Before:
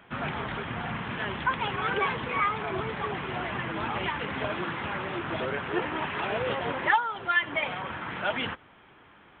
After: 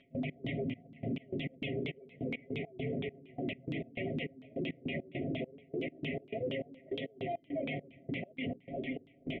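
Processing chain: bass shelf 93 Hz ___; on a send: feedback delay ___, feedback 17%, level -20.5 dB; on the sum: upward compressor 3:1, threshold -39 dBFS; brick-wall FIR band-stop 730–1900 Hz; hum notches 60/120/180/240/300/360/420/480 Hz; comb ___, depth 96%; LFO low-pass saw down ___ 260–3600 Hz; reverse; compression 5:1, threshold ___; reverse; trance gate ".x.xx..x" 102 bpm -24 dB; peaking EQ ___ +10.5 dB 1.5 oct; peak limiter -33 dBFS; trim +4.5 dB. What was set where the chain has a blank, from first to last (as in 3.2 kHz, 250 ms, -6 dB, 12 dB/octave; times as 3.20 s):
+3 dB, 511 ms, 7.4 ms, 4.3 Hz, -40 dBFS, 240 Hz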